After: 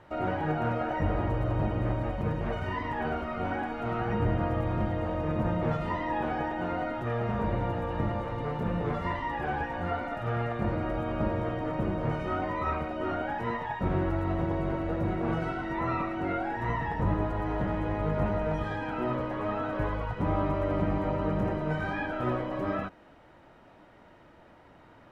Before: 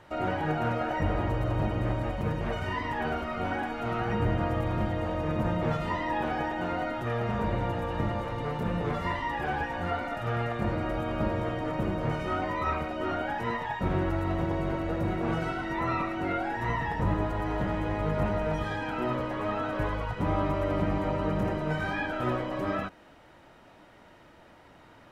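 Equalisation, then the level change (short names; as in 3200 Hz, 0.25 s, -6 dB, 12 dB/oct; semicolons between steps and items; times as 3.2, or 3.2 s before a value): high shelf 3000 Hz -9.5 dB; 0.0 dB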